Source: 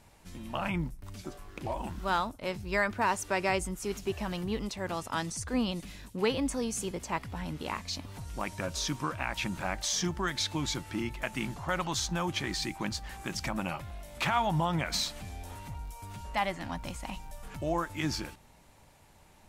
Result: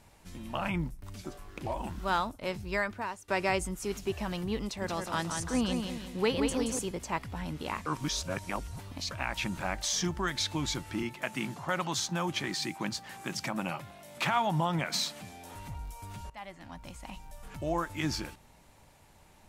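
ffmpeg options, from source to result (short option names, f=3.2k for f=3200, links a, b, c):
-filter_complex "[0:a]asettb=1/sr,asplit=3[a][b][c];[a]atrim=end=4.644[d];[b]atrim=start=4.64:end=6.79,asetpts=PTS-STARTPTS,afade=t=in:d=0.004:c=qsin,afade=t=out:st=2.146:d=0.004:c=qsin,aecho=1:1:176|352|528|704|880:0.531|0.223|0.0936|0.0393|0.0165,atrim=end_sample=94815[e];[c]atrim=start=6.786[f];[d][e]acrossfade=d=0.004:c1=hsin:c2=qsin[g];[g][f]acrossfade=d=0.004:c1=qsin:c2=hsin,asettb=1/sr,asplit=3[h][i][j];[h]atrim=end=11.034[k];[i]atrim=start=11.03:end=15.55,asetpts=PTS-STARTPTS,afade=t=in:d=0.004:c=qsin,afade=t=out:st=4.516:d=0.004:c=qsin,highpass=f=120:w=0.5412,highpass=f=120:w=1.3066[l];[j]atrim=start=15.546[m];[k][l]acrossfade=d=0.004:c1=hsin:c2=qsin[n];[n][m]acrossfade=d=0.004:c1=qsin:c2=hsin,asplit=5[o][p][q][r][s];[o]atrim=end=3.28,asetpts=PTS-STARTPTS,afade=t=out:st=2.62:d=0.66:silence=0.0749894[t];[p]atrim=start=3.28:end=7.862,asetpts=PTS-STARTPTS,afade=t=in:d=0.004:c=hsin:silence=0.0749894[u];[q]atrim=start=7.858:end=9.112,asetpts=PTS-STARTPTS,areverse[v];[r]atrim=start=9.108:end=16.3,asetpts=PTS-STARTPTS,afade=t=out:st=7.188:d=0.004:c=hsin:silence=0.125893[w];[s]atrim=start=16.3,asetpts=PTS-STARTPTS,afade=t=in:d=1.54:silence=0.125893[x];[t][u]concat=n=2:v=0:a=1[y];[y][v]acrossfade=d=0.004:c1=hsin:c2=hsin[z];[w][x]concat=n=2:v=0:a=1[aa];[z][aa]acrossfade=d=0.004:c1=hsin:c2=hsin"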